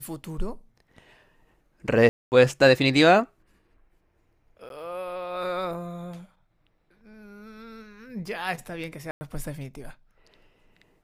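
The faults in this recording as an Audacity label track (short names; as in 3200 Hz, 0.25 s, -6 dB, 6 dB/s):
2.090000	2.320000	gap 0.229 s
4.690000	4.700000	gap
9.110000	9.210000	gap 0.1 s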